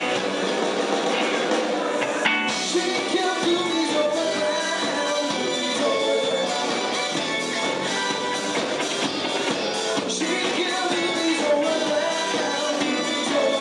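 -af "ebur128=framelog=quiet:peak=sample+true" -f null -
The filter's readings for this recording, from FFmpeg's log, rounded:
Integrated loudness:
  I:         -22.6 LUFS
  Threshold: -32.6 LUFS
Loudness range:
  LRA:         1.6 LU
  Threshold: -42.6 LUFS
  LRA low:   -23.6 LUFS
  LRA high:  -22.0 LUFS
Sample peak:
  Peak:       -6.3 dBFS
True peak:
  Peak:       -6.2 dBFS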